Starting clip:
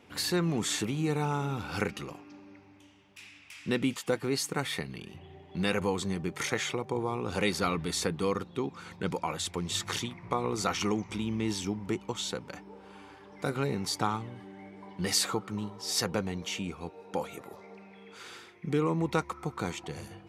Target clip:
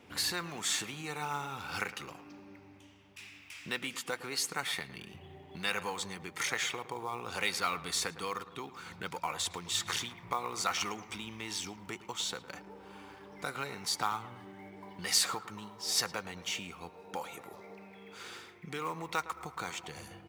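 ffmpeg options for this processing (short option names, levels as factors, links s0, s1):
-filter_complex "[0:a]acrossover=split=730[s0][s1];[s0]acompressor=threshold=0.00447:ratio=4[s2];[s1]acrusher=bits=5:mode=log:mix=0:aa=0.000001[s3];[s2][s3]amix=inputs=2:normalize=0,asplit=2[s4][s5];[s5]adelay=110,lowpass=f=1900:p=1,volume=0.2,asplit=2[s6][s7];[s7]adelay=110,lowpass=f=1900:p=1,volume=0.52,asplit=2[s8][s9];[s9]adelay=110,lowpass=f=1900:p=1,volume=0.52,asplit=2[s10][s11];[s11]adelay=110,lowpass=f=1900:p=1,volume=0.52,asplit=2[s12][s13];[s13]adelay=110,lowpass=f=1900:p=1,volume=0.52[s14];[s4][s6][s8][s10][s12][s14]amix=inputs=6:normalize=0"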